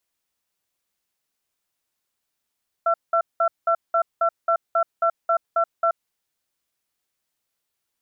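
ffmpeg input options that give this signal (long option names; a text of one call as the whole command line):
ffmpeg -f lavfi -i "aevalsrc='0.112*(sin(2*PI*671*t)+sin(2*PI*1350*t))*clip(min(mod(t,0.27),0.08-mod(t,0.27))/0.005,0,1)':duration=3.09:sample_rate=44100" out.wav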